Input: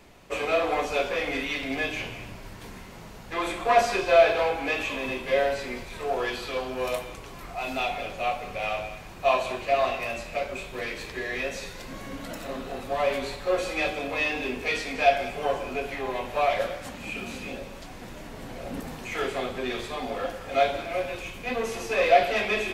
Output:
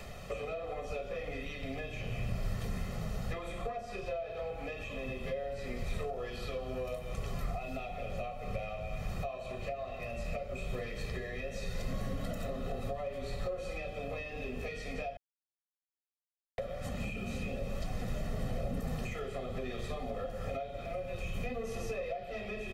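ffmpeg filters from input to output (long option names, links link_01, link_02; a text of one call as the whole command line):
ffmpeg -i in.wav -filter_complex "[0:a]asplit=3[link_01][link_02][link_03];[link_01]atrim=end=15.17,asetpts=PTS-STARTPTS,afade=type=out:start_time=15.166:duration=0.004:curve=hsin[link_04];[link_02]atrim=start=15.17:end=16.58,asetpts=PTS-STARTPTS,volume=0[link_05];[link_03]atrim=start=16.58,asetpts=PTS-STARTPTS,afade=type=in:duration=0.004:curve=hsin[link_06];[link_04][link_05][link_06]concat=n=3:v=0:a=1,acompressor=threshold=-37dB:ratio=6,aecho=1:1:1.6:0.76,acrossover=split=400[link_07][link_08];[link_08]acompressor=threshold=-57dB:ratio=2.5[link_09];[link_07][link_09]amix=inputs=2:normalize=0,volume=6.5dB" out.wav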